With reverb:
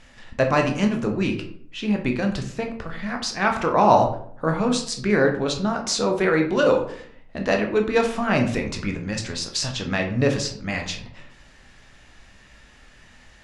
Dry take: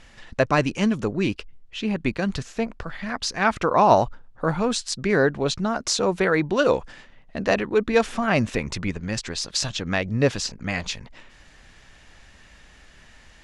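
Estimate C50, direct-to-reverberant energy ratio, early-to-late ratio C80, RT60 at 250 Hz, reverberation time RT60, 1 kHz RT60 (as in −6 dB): 8.5 dB, 2.5 dB, 12.5 dB, 0.75 s, 0.60 s, 0.55 s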